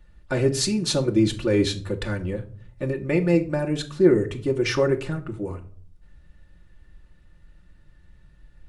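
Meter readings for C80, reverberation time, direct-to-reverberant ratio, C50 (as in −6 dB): 19.5 dB, 0.50 s, 0.5 dB, 15.5 dB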